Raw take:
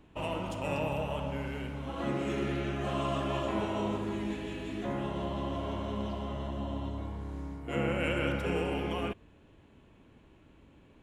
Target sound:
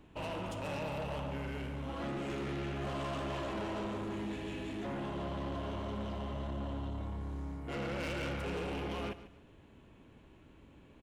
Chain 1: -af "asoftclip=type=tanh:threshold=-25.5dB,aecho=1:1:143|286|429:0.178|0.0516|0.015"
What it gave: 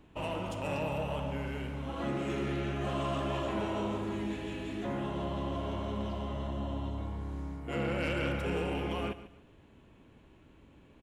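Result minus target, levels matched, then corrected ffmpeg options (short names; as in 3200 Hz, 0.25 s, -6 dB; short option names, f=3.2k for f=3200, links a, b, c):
soft clip: distortion -9 dB
-af "asoftclip=type=tanh:threshold=-35dB,aecho=1:1:143|286|429:0.178|0.0516|0.015"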